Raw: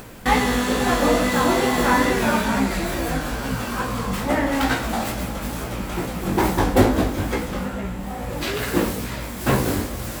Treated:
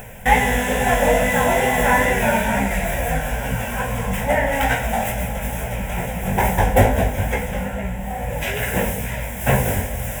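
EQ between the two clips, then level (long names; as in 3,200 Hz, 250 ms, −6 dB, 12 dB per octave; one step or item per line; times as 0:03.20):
phaser with its sweep stopped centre 1,200 Hz, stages 6
+5.5 dB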